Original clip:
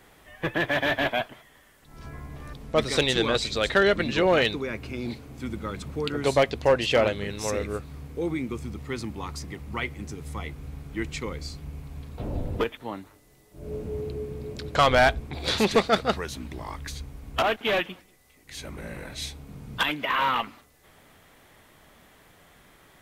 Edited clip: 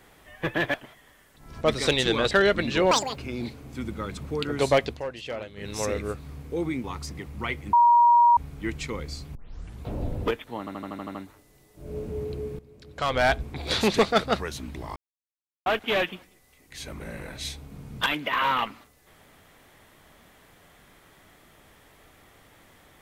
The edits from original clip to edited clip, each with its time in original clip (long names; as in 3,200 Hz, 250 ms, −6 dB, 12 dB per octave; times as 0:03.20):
0:00.74–0:01.22: remove
0:02.09–0:02.71: remove
0:03.41–0:03.72: remove
0:04.32–0:04.81: play speed 196%
0:06.53–0:07.35: duck −13 dB, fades 0.14 s
0:08.49–0:09.17: remove
0:10.06–0:10.70: beep over 951 Hz −13.5 dBFS
0:11.68: tape start 0.48 s
0:12.92: stutter 0.08 s, 8 plays
0:14.36–0:15.17: fade in quadratic, from −16.5 dB
0:16.73–0:17.43: silence